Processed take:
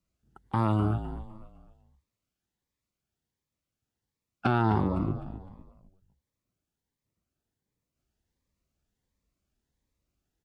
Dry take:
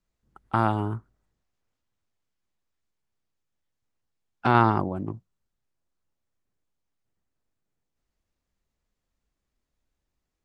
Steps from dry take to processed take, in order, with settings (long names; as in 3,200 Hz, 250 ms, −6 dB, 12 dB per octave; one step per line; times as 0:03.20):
high-pass filter 46 Hz
low-shelf EQ 340 Hz +3.5 dB
brickwall limiter −10.5 dBFS, peak gain reduction 8 dB
on a send: echo with shifted repeats 254 ms, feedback 36%, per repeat −45 Hz, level −11 dB
on the sum: phaser whose notches keep moving one way rising 1.4 Hz